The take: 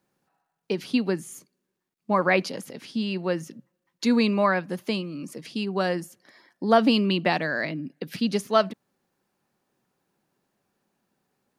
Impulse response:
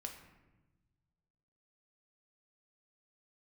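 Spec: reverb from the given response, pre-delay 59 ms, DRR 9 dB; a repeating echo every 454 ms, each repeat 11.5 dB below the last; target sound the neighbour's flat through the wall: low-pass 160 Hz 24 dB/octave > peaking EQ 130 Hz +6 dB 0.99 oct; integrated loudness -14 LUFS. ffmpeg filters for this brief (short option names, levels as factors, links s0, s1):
-filter_complex "[0:a]aecho=1:1:454|908|1362:0.266|0.0718|0.0194,asplit=2[s0][s1];[1:a]atrim=start_sample=2205,adelay=59[s2];[s1][s2]afir=irnorm=-1:irlink=0,volume=0.501[s3];[s0][s3]amix=inputs=2:normalize=0,lowpass=f=160:w=0.5412,lowpass=f=160:w=1.3066,equalizer=f=130:t=o:w=0.99:g=6,volume=14.1"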